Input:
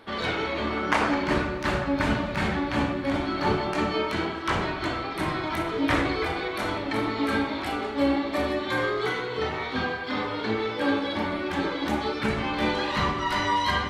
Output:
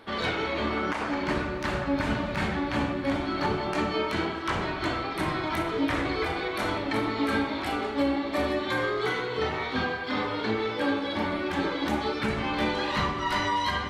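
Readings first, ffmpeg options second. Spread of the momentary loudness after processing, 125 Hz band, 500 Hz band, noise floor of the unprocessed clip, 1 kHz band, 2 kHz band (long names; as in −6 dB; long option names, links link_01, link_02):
2 LU, −2.0 dB, −1.5 dB, −33 dBFS, −1.5 dB, −1.5 dB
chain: -af "alimiter=limit=-16.5dB:level=0:latency=1:release=344"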